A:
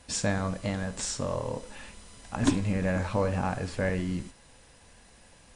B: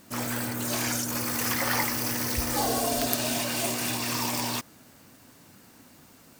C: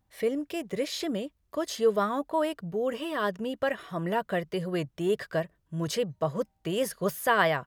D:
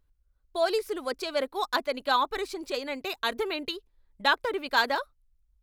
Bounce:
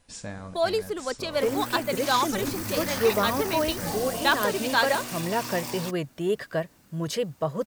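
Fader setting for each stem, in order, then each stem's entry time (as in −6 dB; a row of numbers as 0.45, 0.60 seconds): −9.5, −6.0, +1.0, +1.0 decibels; 0.00, 1.30, 1.20, 0.00 seconds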